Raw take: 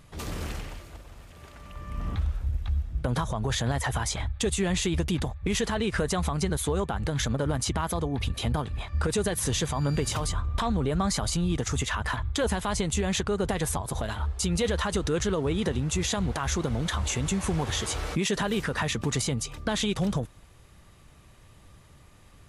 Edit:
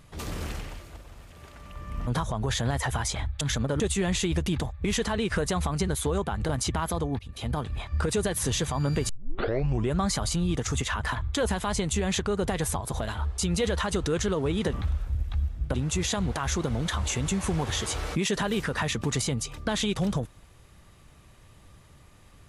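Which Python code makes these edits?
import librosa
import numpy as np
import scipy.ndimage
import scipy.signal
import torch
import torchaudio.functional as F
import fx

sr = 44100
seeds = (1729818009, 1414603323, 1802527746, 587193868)

y = fx.edit(x, sr, fx.move(start_s=2.07, length_s=1.01, to_s=15.74),
    fx.move(start_s=7.11, length_s=0.39, to_s=4.42),
    fx.fade_in_from(start_s=8.2, length_s=0.44, floor_db=-24.0),
    fx.tape_start(start_s=10.1, length_s=0.86), tone=tone)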